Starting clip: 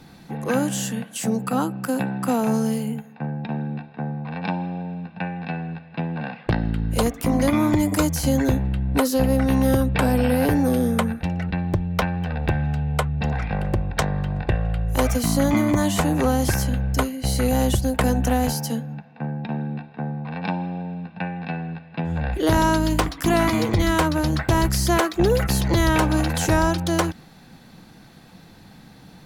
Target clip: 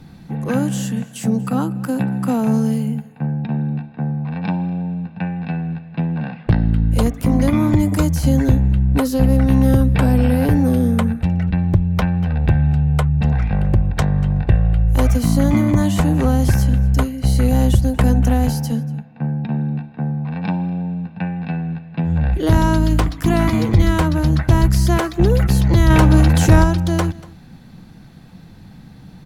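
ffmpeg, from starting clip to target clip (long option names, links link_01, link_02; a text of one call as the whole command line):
ffmpeg -i in.wav -filter_complex "[0:a]bass=frequency=250:gain=10,treble=frequency=4000:gain=-2,aecho=1:1:238:0.0841,asettb=1/sr,asplit=3[link_01][link_02][link_03];[link_01]atrim=end=25.904[link_04];[link_02]atrim=start=25.9:end=26.64,asetpts=PTS-STARTPTS,afade=type=in:duration=0.004:curve=qsin,afade=type=out:start_time=0.736:duration=0.004:curve=qsin,acontrast=29[link_05];[link_03]atrim=start=26.636[link_06];[link_04][link_05]acrossfade=duration=0.004:curve1=hsin:curve2=qsin[link_07];[link_07][link_06]acrossfade=duration=0.004:curve1=qsin:curve2=hsin,volume=-1dB" out.wav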